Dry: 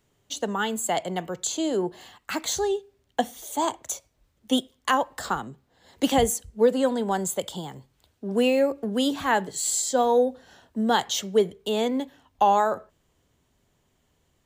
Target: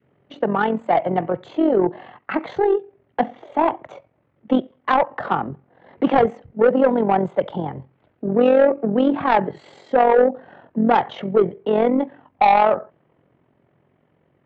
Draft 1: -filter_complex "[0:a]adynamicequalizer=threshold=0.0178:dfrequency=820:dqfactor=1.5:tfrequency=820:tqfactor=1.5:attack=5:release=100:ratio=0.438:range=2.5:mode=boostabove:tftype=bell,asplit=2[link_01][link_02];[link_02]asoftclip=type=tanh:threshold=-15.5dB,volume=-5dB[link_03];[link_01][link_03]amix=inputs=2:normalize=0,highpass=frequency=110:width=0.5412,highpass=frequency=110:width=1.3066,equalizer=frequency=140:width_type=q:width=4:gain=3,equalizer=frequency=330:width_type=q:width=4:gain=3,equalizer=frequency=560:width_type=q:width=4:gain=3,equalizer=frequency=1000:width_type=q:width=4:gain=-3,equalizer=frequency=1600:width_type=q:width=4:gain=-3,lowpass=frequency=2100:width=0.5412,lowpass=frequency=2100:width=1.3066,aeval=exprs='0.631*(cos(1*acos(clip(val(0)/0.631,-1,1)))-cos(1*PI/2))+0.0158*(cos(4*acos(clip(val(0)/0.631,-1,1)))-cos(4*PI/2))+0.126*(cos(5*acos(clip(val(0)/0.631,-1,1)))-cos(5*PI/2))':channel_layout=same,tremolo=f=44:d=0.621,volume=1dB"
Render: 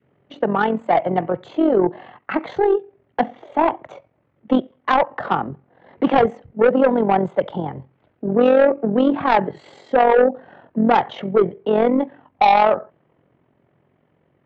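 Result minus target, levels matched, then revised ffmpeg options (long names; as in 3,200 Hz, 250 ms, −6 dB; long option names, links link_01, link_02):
soft clipping: distortion −8 dB
-filter_complex "[0:a]adynamicequalizer=threshold=0.0178:dfrequency=820:dqfactor=1.5:tfrequency=820:tqfactor=1.5:attack=5:release=100:ratio=0.438:range=2.5:mode=boostabove:tftype=bell,asplit=2[link_01][link_02];[link_02]asoftclip=type=tanh:threshold=-26.5dB,volume=-5dB[link_03];[link_01][link_03]amix=inputs=2:normalize=0,highpass=frequency=110:width=0.5412,highpass=frequency=110:width=1.3066,equalizer=frequency=140:width_type=q:width=4:gain=3,equalizer=frequency=330:width_type=q:width=4:gain=3,equalizer=frequency=560:width_type=q:width=4:gain=3,equalizer=frequency=1000:width_type=q:width=4:gain=-3,equalizer=frequency=1600:width_type=q:width=4:gain=-3,lowpass=frequency=2100:width=0.5412,lowpass=frequency=2100:width=1.3066,aeval=exprs='0.631*(cos(1*acos(clip(val(0)/0.631,-1,1)))-cos(1*PI/2))+0.0158*(cos(4*acos(clip(val(0)/0.631,-1,1)))-cos(4*PI/2))+0.126*(cos(5*acos(clip(val(0)/0.631,-1,1)))-cos(5*PI/2))':channel_layout=same,tremolo=f=44:d=0.621,volume=1dB"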